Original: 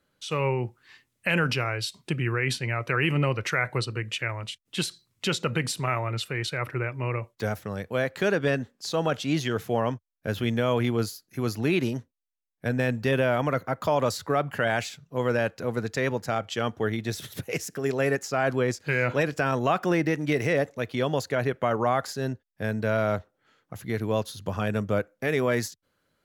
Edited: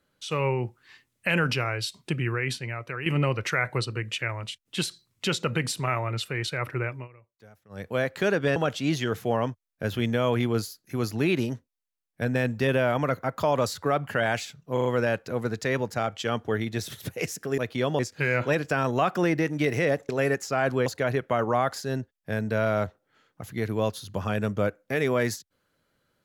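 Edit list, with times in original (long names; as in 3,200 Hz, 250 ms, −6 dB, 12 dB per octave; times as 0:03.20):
0:02.17–0:03.06: fade out, to −11 dB
0:06.92–0:07.85: duck −23.5 dB, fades 0.16 s
0:08.56–0:09.00: remove
0:15.17: stutter 0.04 s, 4 plays
0:17.90–0:18.67: swap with 0:20.77–0:21.18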